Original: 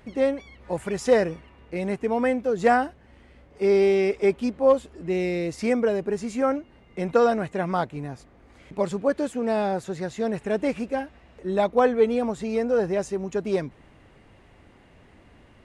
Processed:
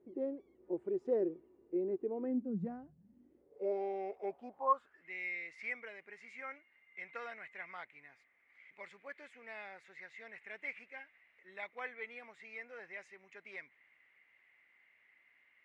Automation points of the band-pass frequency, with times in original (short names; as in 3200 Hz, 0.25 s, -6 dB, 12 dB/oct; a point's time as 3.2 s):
band-pass, Q 8.1
2.2 s 360 Hz
2.83 s 130 Hz
3.78 s 720 Hz
4.5 s 720 Hz
5.05 s 2100 Hz